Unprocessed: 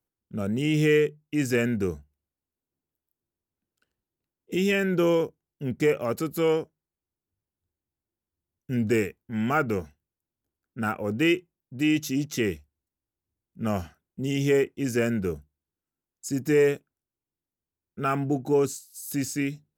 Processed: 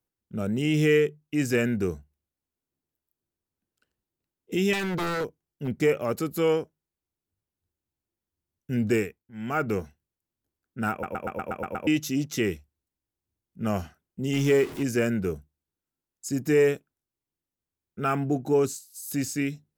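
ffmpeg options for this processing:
-filter_complex "[0:a]asettb=1/sr,asplit=3[s0][s1][s2];[s0]atrim=end=4.734[s3];[s1]atrim=start=4.73:end=5.68,asetpts=PTS-STARTPTS,afade=t=in:d=0.004:c=qsin,afade=t=out:st=0.946:d=0.004:c=qsin,aeval=exprs='0.0708*(abs(mod(val(0)/0.0708+3,4)-2)-1)':c=same[s4];[s2]atrim=start=5.676[s5];[s3][s4]acrossfade=d=0.004:c1=hsin:c2=qsin[s6];[s6][s5]acrossfade=d=0.004:c1=qsin:c2=hsin,asettb=1/sr,asplit=3[s7][s8][s9];[s7]atrim=end=14.334[s10];[s8]atrim=start=14.33:end=14.83,asetpts=PTS-STARTPTS,afade=t=in:d=0.004:c=qsin,afade=t=out:st=0.496:d=0.004:c=qsin,aeval=exprs='val(0)+0.5*0.02*sgn(val(0))':c=same[s11];[s9]atrim=start=14.826[s12];[s10][s11]acrossfade=d=0.004:c1=hsin:c2=qsin[s13];[s13][s12]acrossfade=d=0.004:c1=qsin:c2=hsin,asplit=11[s14][s15][s16][s17][s18][s19][s20][s21][s22][s23][s24];[s14]atrim=end=9.31,asetpts=PTS-STARTPTS,afade=t=out:st=8.93:d=0.38:silence=0.199526[s25];[s15]atrim=start=9.31:end=9.33,asetpts=PTS-STARTPTS,volume=0.2[s26];[s16]atrim=start=9.33:end=11.032,asetpts=PTS-STARTPTS,afade=t=in:d=0.38:silence=0.199526[s27];[s17]atrim=start=10.908:end=11.032[s28];[s18]atrim=start=10.908:end=11.032[s29];[s19]atrim=start=10.908:end=11.032[s30];[s20]atrim=start=10.908:end=11.032[s31];[s21]atrim=start=10.908:end=11.032[s32];[s22]atrim=start=10.908:end=11.032[s33];[s23]atrim=start=10.908:end=11.032[s34];[s24]atrim=start=11.868[s35];[s25][s26][s27]concat=n=3:v=0:a=1[s36];[s36][s28]acrossfade=d=0.004:c1=hsin:c2=hsin[s37];[s37][s29]acrossfade=d=0.004:c1=hsin:c2=hsin[s38];[s38][s30]acrossfade=d=0.004:c1=hsin:c2=hsin[s39];[s39][s31]acrossfade=d=0.004:c1=hsin:c2=hsin[s40];[s40][s32]acrossfade=d=0.004:c1=hsin:c2=hsin[s41];[s41][s33]acrossfade=d=0.004:c1=hsin:c2=hsin[s42];[s42][s34]acrossfade=d=0.004:c1=hsin:c2=hsin[s43];[s43][s35]acrossfade=d=0.004:c1=hsin:c2=hsin"

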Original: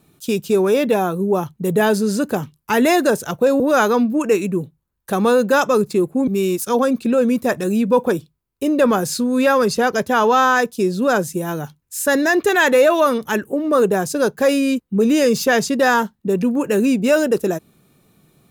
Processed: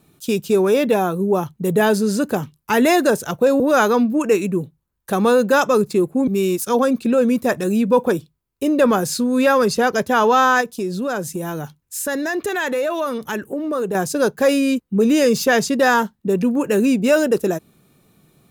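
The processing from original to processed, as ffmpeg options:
-filter_complex "[0:a]asettb=1/sr,asplit=3[s0][s1][s2];[s0]atrim=end=10.614[s3];[s1]atrim=start=10.61:end=13.95,asetpts=PTS-STARTPTS,afade=t=in:d=0.004:c=qsin,afade=t=out:st=3.336:d=0.004:c=qsin,acompressor=threshold=0.0794:ratio=2.5:attack=3.2:release=140:knee=1:detection=peak[s4];[s2]atrim=start=13.946[s5];[s3][s4]acrossfade=d=0.004:c1=hsin:c2=qsin[s6];[s6][s5]acrossfade=d=0.004:c1=qsin:c2=hsin"

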